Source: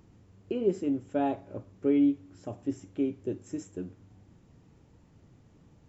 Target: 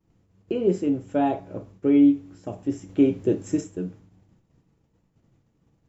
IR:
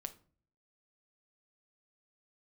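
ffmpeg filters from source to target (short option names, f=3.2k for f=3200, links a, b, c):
-filter_complex "[0:a]agate=range=-33dB:threshold=-48dB:ratio=3:detection=peak,asettb=1/sr,asplit=3[a][b][c];[a]atrim=end=2.894[d];[b]atrim=start=2.89:end=3.61,asetpts=PTS-STARTPTS,afade=t=in:d=0.004:c=qsin,afade=t=out:st=0.716:d=0.004:c=qsin,acontrast=44[e];[c]atrim=start=3.606[f];[d][e]acrossfade=d=0.004:c1=hsin:c2=qsin[g];[g][f]acrossfade=d=0.004:c1=qsin:c2=hsin[h];[1:a]atrim=start_sample=2205,atrim=end_sample=3087[i];[h][i]afir=irnorm=-1:irlink=0,volume=9dB"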